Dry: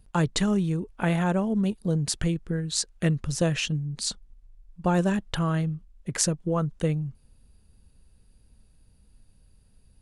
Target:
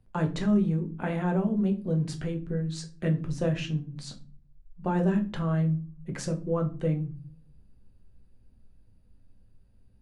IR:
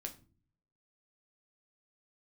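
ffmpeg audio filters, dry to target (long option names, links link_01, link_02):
-filter_complex "[0:a]lowpass=frequency=1600:poles=1,acrossover=split=140[link_01][link_02];[link_01]asoftclip=type=hard:threshold=-33.5dB[link_03];[link_03][link_02]amix=inputs=2:normalize=0[link_04];[1:a]atrim=start_sample=2205[link_05];[link_04][link_05]afir=irnorm=-1:irlink=0"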